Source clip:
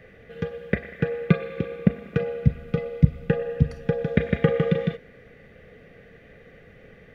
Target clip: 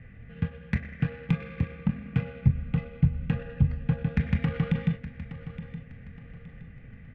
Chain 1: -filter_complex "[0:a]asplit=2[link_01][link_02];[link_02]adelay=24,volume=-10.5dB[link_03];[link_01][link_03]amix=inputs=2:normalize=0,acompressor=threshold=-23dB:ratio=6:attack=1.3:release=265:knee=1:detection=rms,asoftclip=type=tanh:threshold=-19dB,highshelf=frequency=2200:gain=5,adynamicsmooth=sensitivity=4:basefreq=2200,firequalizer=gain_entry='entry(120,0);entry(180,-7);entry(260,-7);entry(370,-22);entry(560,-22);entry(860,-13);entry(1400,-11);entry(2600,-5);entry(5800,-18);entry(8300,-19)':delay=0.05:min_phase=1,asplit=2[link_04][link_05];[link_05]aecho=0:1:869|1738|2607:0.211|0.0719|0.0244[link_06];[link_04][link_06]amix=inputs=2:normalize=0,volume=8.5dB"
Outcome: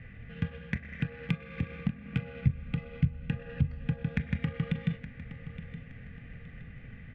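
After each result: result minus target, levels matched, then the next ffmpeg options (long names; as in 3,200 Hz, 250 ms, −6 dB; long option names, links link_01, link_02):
downward compressor: peak gain reduction +9.5 dB; 4,000 Hz band +5.5 dB
-filter_complex "[0:a]asplit=2[link_01][link_02];[link_02]adelay=24,volume=-10.5dB[link_03];[link_01][link_03]amix=inputs=2:normalize=0,acompressor=threshold=-11.5dB:ratio=6:attack=1.3:release=265:knee=1:detection=rms,asoftclip=type=tanh:threshold=-19dB,highshelf=frequency=2200:gain=5,adynamicsmooth=sensitivity=4:basefreq=2200,firequalizer=gain_entry='entry(120,0);entry(180,-7);entry(260,-7);entry(370,-22);entry(560,-22);entry(860,-13);entry(1400,-11);entry(2600,-5);entry(5800,-18);entry(8300,-19)':delay=0.05:min_phase=1,asplit=2[link_04][link_05];[link_05]aecho=0:1:869|1738|2607:0.211|0.0719|0.0244[link_06];[link_04][link_06]amix=inputs=2:normalize=0,volume=8.5dB"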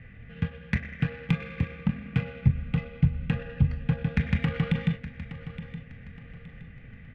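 4,000 Hz band +5.5 dB
-filter_complex "[0:a]asplit=2[link_01][link_02];[link_02]adelay=24,volume=-10.5dB[link_03];[link_01][link_03]amix=inputs=2:normalize=0,acompressor=threshold=-11.5dB:ratio=6:attack=1.3:release=265:knee=1:detection=rms,asoftclip=type=tanh:threshold=-19dB,highshelf=frequency=2200:gain=-3,adynamicsmooth=sensitivity=4:basefreq=2200,firequalizer=gain_entry='entry(120,0);entry(180,-7);entry(260,-7);entry(370,-22);entry(560,-22);entry(860,-13);entry(1400,-11);entry(2600,-5);entry(5800,-18);entry(8300,-19)':delay=0.05:min_phase=1,asplit=2[link_04][link_05];[link_05]aecho=0:1:869|1738|2607:0.211|0.0719|0.0244[link_06];[link_04][link_06]amix=inputs=2:normalize=0,volume=8.5dB"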